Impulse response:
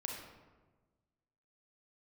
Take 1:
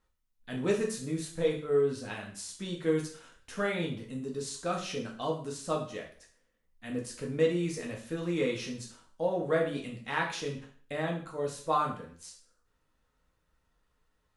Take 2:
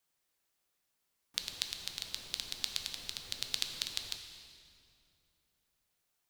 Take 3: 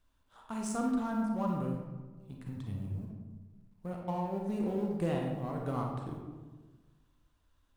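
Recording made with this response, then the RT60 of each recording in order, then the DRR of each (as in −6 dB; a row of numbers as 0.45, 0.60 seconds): 3; 0.50, 2.5, 1.3 seconds; −1.5, 4.5, 0.0 decibels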